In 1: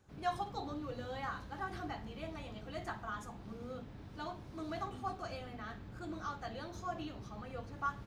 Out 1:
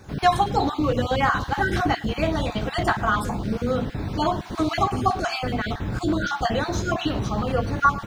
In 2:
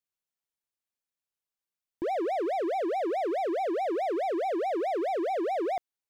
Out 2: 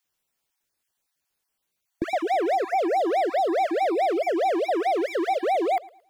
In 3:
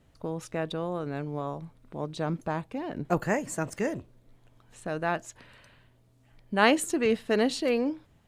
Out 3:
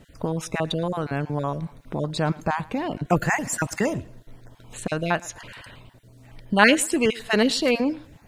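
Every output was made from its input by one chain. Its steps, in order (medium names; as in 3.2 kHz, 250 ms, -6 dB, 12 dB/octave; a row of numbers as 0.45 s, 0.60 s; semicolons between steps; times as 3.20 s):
random holes in the spectrogram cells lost 21%; band-stop 1.2 kHz, Q 24; dynamic bell 400 Hz, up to -6 dB, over -41 dBFS, Q 0.87; in parallel at -1.5 dB: compression, threshold -41 dBFS; on the sum: thinning echo 111 ms, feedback 31%, high-pass 160 Hz, level -22 dB; normalise loudness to -24 LUFS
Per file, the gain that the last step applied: +17.0 dB, +8.0 dB, +8.0 dB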